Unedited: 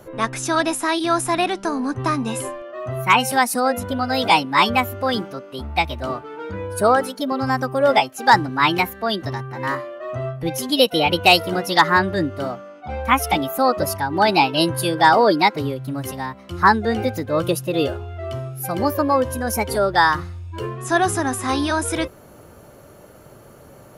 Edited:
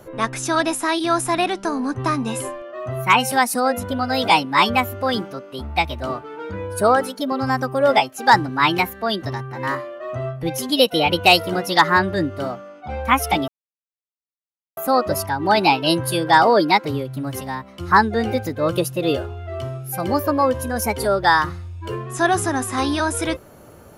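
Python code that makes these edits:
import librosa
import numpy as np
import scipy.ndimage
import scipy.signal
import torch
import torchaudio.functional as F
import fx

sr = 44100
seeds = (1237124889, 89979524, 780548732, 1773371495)

y = fx.edit(x, sr, fx.insert_silence(at_s=13.48, length_s=1.29), tone=tone)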